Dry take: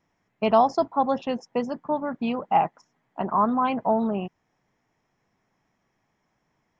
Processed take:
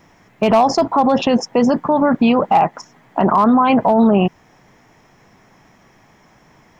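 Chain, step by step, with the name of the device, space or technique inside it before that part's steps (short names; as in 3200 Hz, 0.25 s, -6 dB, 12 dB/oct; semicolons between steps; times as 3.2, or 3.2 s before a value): loud club master (compressor 1.5:1, threshold -25 dBFS, peak gain reduction 4.5 dB; hard clip -16 dBFS, distortion -24 dB; maximiser +27 dB); gain -5 dB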